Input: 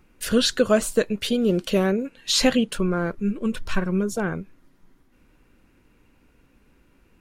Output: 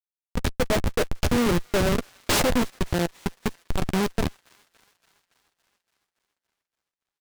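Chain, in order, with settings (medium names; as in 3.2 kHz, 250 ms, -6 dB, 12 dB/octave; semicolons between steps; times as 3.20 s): fade-in on the opening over 1.01 s; spectral noise reduction 23 dB; 0.98–3.51 s: high-pass 240 Hz 12 dB/octave; dynamic bell 590 Hz, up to +6 dB, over -37 dBFS, Q 4.5; Schmitt trigger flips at -21 dBFS; doubling 12 ms -12.5 dB; feedback echo behind a high-pass 283 ms, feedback 67%, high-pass 1.7 kHz, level -23 dB; delay time shaken by noise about 1.5 kHz, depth 0.072 ms; trim +5.5 dB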